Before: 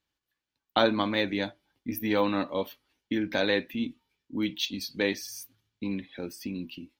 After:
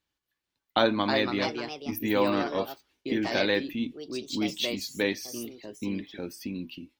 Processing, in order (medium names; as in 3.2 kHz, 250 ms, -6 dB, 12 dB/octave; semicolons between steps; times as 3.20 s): ever faster or slower copies 440 ms, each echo +3 st, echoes 2, each echo -6 dB